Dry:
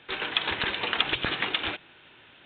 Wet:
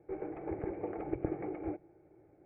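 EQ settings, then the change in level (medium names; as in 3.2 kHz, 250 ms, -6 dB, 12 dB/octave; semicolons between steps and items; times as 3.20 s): cascade formant filter u; static phaser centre 940 Hz, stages 6; +14.5 dB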